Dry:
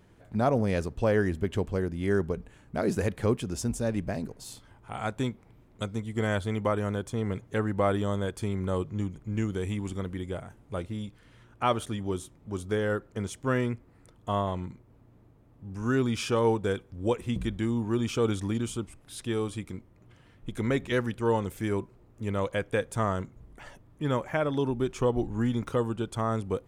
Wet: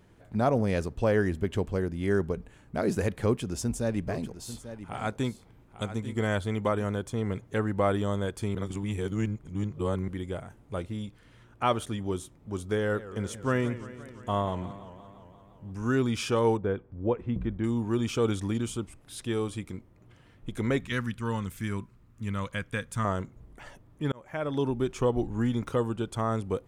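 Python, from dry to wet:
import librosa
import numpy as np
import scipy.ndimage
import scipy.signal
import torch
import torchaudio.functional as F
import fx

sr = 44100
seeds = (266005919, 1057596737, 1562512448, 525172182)

y = fx.echo_single(x, sr, ms=843, db=-12.5, at=(3.23, 6.85))
y = fx.echo_warbled(y, sr, ms=173, feedback_pct=70, rate_hz=2.8, cents=181, wet_db=-15, at=(12.77, 15.72))
y = fx.bessel_lowpass(y, sr, hz=1300.0, order=2, at=(16.57, 17.64))
y = fx.band_shelf(y, sr, hz=520.0, db=-10.5, octaves=1.7, at=(20.8, 23.05))
y = fx.edit(y, sr, fx.reverse_span(start_s=8.55, length_s=1.53),
    fx.fade_in_span(start_s=24.12, length_s=0.49), tone=tone)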